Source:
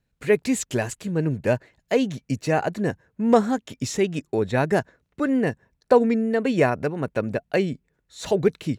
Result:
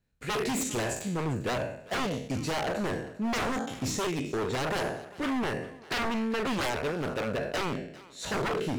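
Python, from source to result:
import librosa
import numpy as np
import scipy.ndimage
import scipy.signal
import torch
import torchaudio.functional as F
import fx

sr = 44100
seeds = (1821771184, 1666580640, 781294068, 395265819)

y = fx.spec_trails(x, sr, decay_s=0.67)
y = 10.0 ** (-19.5 / 20.0) * (np.abs((y / 10.0 ** (-19.5 / 20.0) + 3.0) % 4.0 - 2.0) - 1.0)
y = fx.echo_thinned(y, sr, ms=399, feedback_pct=18, hz=420.0, wet_db=-19.0)
y = y * librosa.db_to_amplitude(-5.0)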